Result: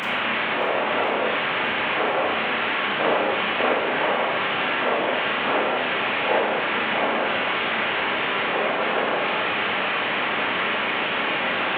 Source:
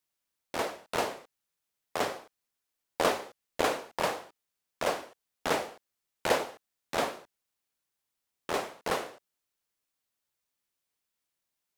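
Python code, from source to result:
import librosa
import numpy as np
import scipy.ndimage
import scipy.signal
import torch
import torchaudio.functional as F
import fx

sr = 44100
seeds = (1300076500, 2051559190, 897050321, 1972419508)

y = fx.delta_mod(x, sr, bps=16000, step_db=-22.0)
y = scipy.signal.sosfilt(scipy.signal.butter(2, 190.0, 'highpass', fs=sr, output='sos'), y)
y = fx.echo_swing(y, sr, ms=1037, ratio=1.5, feedback_pct=66, wet_db=-17.0)
y = fx.rev_schroeder(y, sr, rt60_s=0.51, comb_ms=28, drr_db=-2.0)
y = y * 10.0 ** (1.5 / 20.0)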